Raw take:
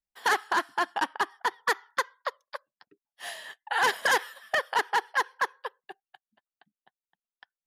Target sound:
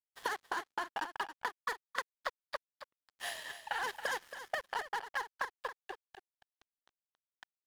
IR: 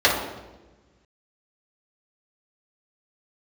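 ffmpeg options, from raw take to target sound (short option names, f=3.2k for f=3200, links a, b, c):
-filter_complex "[0:a]acompressor=threshold=-34dB:ratio=16,aeval=exprs='sgn(val(0))*max(abs(val(0))-0.00335,0)':c=same,asplit=2[a][b];[b]aecho=0:1:275:0.282[c];[a][c]amix=inputs=2:normalize=0,volume=1.5dB"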